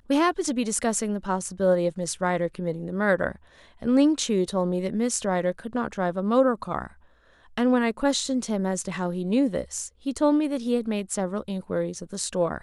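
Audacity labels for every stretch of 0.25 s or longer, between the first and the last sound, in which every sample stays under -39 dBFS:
3.360000	3.820000	silence
6.900000	7.580000	silence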